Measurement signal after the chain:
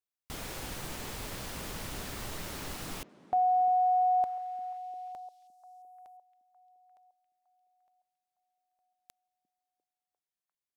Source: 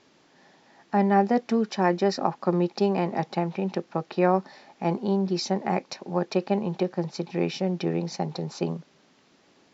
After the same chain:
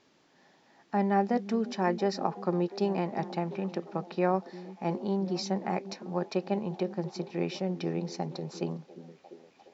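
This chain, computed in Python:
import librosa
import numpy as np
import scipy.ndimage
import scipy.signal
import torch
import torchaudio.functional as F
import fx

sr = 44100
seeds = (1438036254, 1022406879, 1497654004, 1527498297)

y = fx.echo_stepped(x, sr, ms=349, hz=240.0, octaves=0.7, feedback_pct=70, wet_db=-11.0)
y = y * 10.0 ** (-5.5 / 20.0)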